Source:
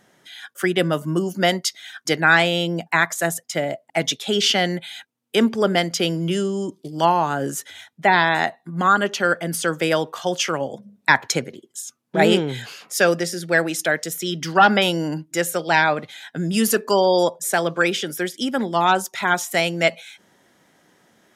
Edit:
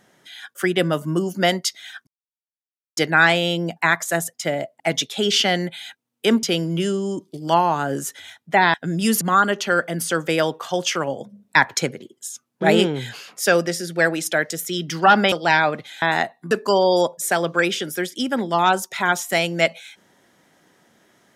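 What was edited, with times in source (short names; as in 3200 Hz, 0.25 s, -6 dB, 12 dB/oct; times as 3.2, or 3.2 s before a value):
2.07 insert silence 0.90 s
5.53–5.94 cut
8.25–8.74 swap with 16.26–16.73
14.85–15.56 cut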